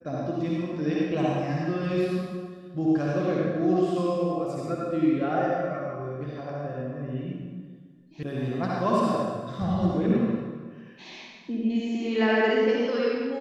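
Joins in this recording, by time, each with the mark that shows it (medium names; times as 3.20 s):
8.23 s: sound stops dead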